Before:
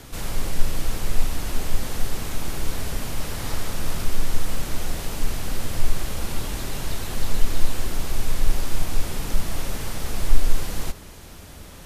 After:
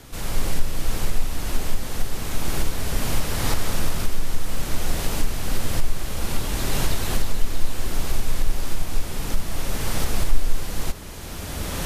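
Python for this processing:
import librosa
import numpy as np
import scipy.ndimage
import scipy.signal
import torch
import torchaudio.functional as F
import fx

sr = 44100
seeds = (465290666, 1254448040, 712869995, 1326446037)

y = fx.recorder_agc(x, sr, target_db=-7.0, rise_db_per_s=14.0, max_gain_db=30)
y = F.gain(torch.from_numpy(y), -2.5).numpy()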